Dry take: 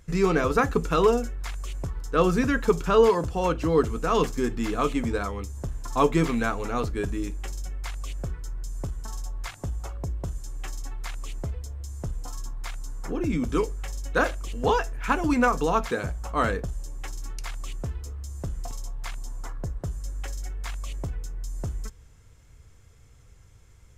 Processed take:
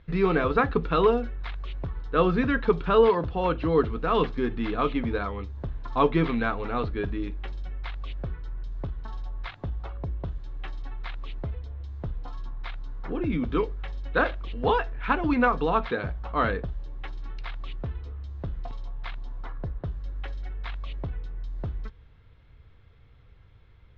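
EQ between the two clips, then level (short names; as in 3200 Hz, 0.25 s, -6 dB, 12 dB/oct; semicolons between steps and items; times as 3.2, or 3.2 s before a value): elliptic low-pass 3900 Hz, stop band 80 dB; 0.0 dB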